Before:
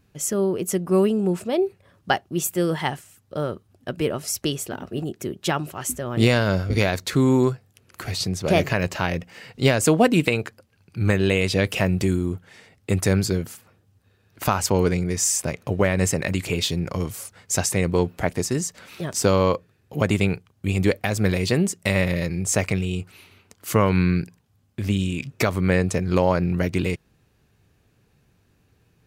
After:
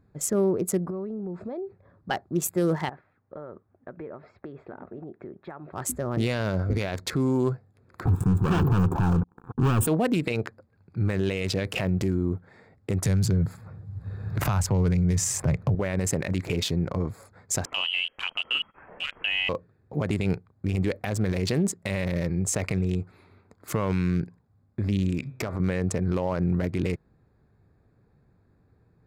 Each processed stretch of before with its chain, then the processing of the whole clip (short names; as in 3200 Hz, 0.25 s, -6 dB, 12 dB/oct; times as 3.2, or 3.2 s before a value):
0.9–2.11 compressor 8:1, threshold -30 dBFS + air absorption 120 m
2.89–5.73 LPF 2800 Hz 24 dB/oct + low shelf 240 Hz -11 dB + compressor 5:1, threshold -35 dBFS
8.05–9.87 inverse Chebyshev band-stop 2000–5400 Hz, stop band 60 dB + sample leveller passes 5 + fixed phaser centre 3000 Hz, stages 8
13.05–15.75 resonant low shelf 200 Hz +9 dB, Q 1.5 + three-band squash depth 70%
17.65–19.49 notches 50/100/150 Hz + inverted band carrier 3100 Hz
25.19–25.6 de-hum 129.3 Hz, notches 32 + compressor 5:1, threshold -25 dBFS
whole clip: Wiener smoothing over 15 samples; limiter -16 dBFS